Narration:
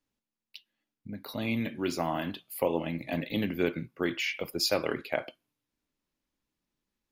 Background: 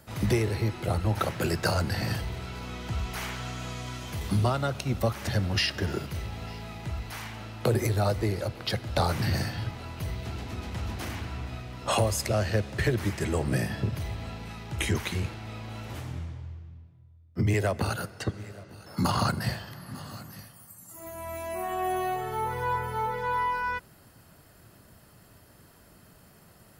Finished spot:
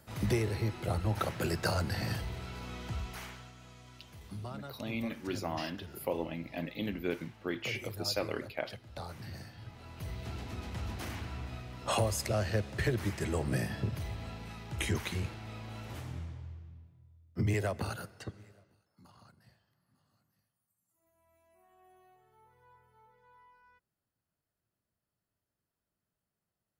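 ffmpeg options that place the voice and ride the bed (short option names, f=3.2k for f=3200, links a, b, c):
-filter_complex "[0:a]adelay=3450,volume=-6dB[a];[1:a]volume=7.5dB,afade=t=out:st=2.83:d=0.69:silence=0.237137,afade=t=in:st=9.57:d=0.74:silence=0.237137,afade=t=out:st=17.45:d=1.43:silence=0.0354813[b];[a][b]amix=inputs=2:normalize=0"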